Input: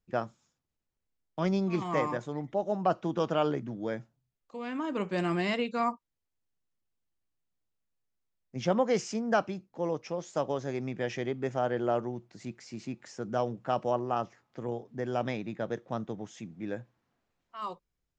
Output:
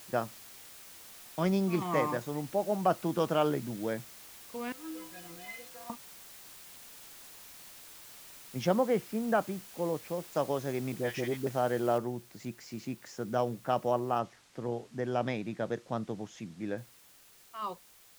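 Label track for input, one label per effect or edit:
4.720000	5.900000	stiff-string resonator 150 Hz, decay 0.7 s, inharmonicity 0.03
8.720000	10.320000	high-frequency loss of the air 410 metres
10.920000	11.470000	all-pass dispersion highs, late by 54 ms, half as late at 940 Hz
11.980000	11.980000	noise floor change −51 dB −59 dB
14.190000	16.780000	low-pass filter 7,300 Hz

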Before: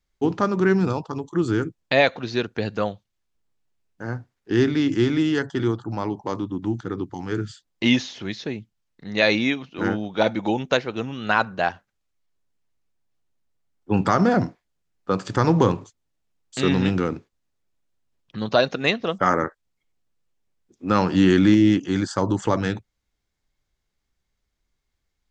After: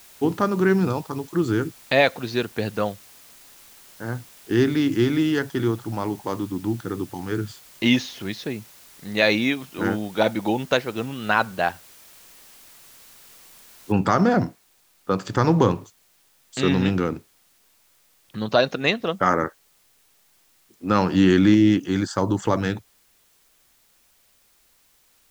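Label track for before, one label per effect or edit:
13.920000	13.920000	noise floor change −49 dB −61 dB

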